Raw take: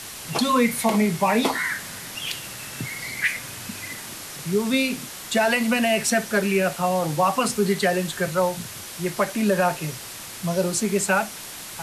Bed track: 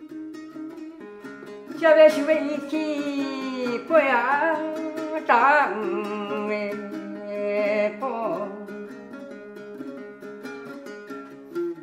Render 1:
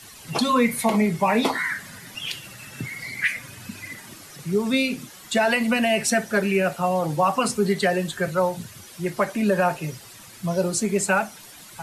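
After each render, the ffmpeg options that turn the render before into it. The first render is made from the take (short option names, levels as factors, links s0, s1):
-af "afftdn=nr=11:nf=-37"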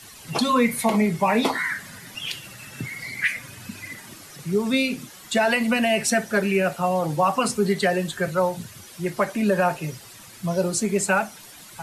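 -af anull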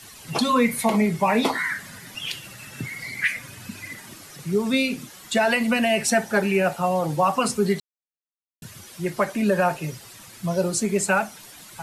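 -filter_complex "[0:a]asettb=1/sr,asplit=3[s0][s1][s2];[s0]atrim=end=6.084[s3];[s1]atrim=start=6.08:end=6.79,asetpts=PTS-STARTPTS,afade=t=in:d=0.004:c=qsin,afade=t=out:st=0.706:d=0.004:c=qsin,equalizer=f=840:w=4.5:g=10[s4];[s2]atrim=start=6.786[s5];[s3][s4]acrossfade=d=0.004:c1=hsin:c2=qsin[s6];[s6][s5]acrossfade=d=0.004:c1=qsin:c2=hsin,asplit=3[s7][s8][s9];[s7]atrim=end=7.8,asetpts=PTS-STARTPTS,afade=t=out:st=7.796:d=0.004:c=hsin[s10];[s8]atrim=start=7.8:end=8.62,asetpts=PTS-STARTPTS,volume=0[s11];[s9]atrim=start=8.62,asetpts=PTS-STARTPTS,afade=t=in:d=0.004:c=hsin[s12];[s10][s11][s12]concat=n=3:v=0:a=1"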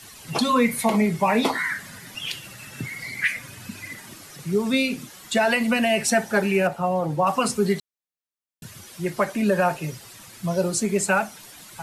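-filter_complex "[0:a]asettb=1/sr,asplit=3[s0][s1][s2];[s0]atrim=end=6.674[s3];[s1]atrim=start=6.67:end=7.27,asetpts=PTS-STARTPTS,afade=t=in:d=0.004:c=qsin,afade=t=out:st=0.596:d=0.004:c=qsin,highshelf=f=2300:g=-10.5[s4];[s2]atrim=start=7.266[s5];[s3][s4]acrossfade=d=0.004:c1=hsin:c2=qsin[s6];[s6][s5]acrossfade=d=0.004:c1=qsin:c2=hsin"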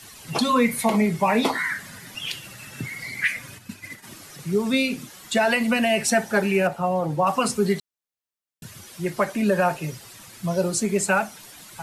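-filter_complex "[0:a]asplit=3[s0][s1][s2];[s0]afade=t=out:st=3.57:d=0.02[s3];[s1]agate=range=0.0224:threshold=0.0178:ratio=3:release=100:detection=peak,afade=t=in:st=3.57:d=0.02,afade=t=out:st=4.02:d=0.02[s4];[s2]afade=t=in:st=4.02:d=0.02[s5];[s3][s4][s5]amix=inputs=3:normalize=0"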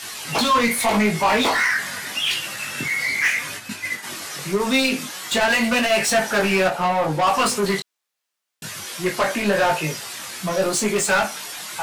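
-filter_complex "[0:a]asplit=2[s0][s1];[s1]highpass=f=720:p=1,volume=14.1,asoftclip=type=tanh:threshold=0.355[s2];[s0][s2]amix=inputs=2:normalize=0,lowpass=f=7100:p=1,volume=0.501,flanger=delay=19:depth=2.6:speed=0.82"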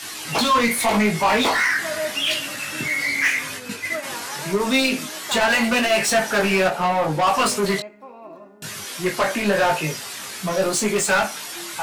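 -filter_complex "[1:a]volume=0.211[s0];[0:a][s0]amix=inputs=2:normalize=0"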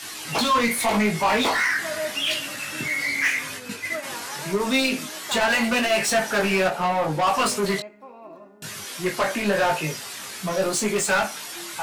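-af "volume=0.75"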